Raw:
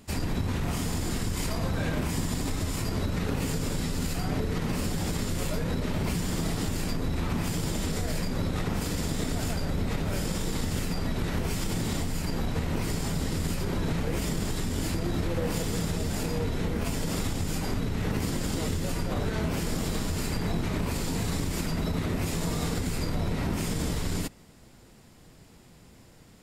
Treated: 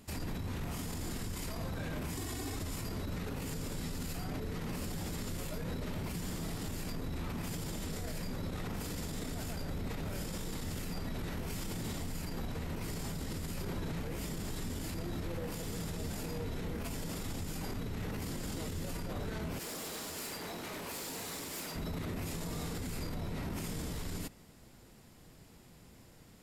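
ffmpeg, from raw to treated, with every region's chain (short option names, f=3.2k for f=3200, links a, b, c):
-filter_complex "[0:a]asettb=1/sr,asplit=3[a][b][c];[a]atrim=end=2.174[d];[b]atrim=start=2.17:end=2.57,asetpts=PTS-STARTPTS,afade=t=in:d=0.004:c=qsin,afade=t=out:st=0.396:d=0.004:c=qsin,highpass=55,aecho=1:1:2.7:0.87,atrim=end_sample=17640[e];[c]atrim=start=2.566[f];[d][e]acrossfade=d=0.004:c1=hsin:c2=qsin[g];[g][f]acrossfade=d=0.004:c1=qsin:c2=hsin,asettb=1/sr,asplit=3[h][i][j];[h]atrim=end=19.594[k];[i]atrim=start=19.59:end=21.76,asetpts=PTS-STARTPTS,afade=t=in:d=0.004:c=qsin,afade=t=out:st=2.166:d=0.004:c=qsin,highpass=f=110:p=1,bass=f=250:g=-14,treble=f=4k:g=2,asoftclip=type=hard:threshold=-35.5dB[l];[j]atrim=start=21.756[m];[k][l]acrossfade=d=0.004:c1=hsin:c2=qsin[n];[n][m]acrossfade=d=0.004:c1=qsin:c2=hsin,equalizer=f=12k:t=o:w=0.26:g=6,alimiter=level_in=2.5dB:limit=-24dB:level=0:latency=1:release=33,volume=-2.5dB,volume=-4dB"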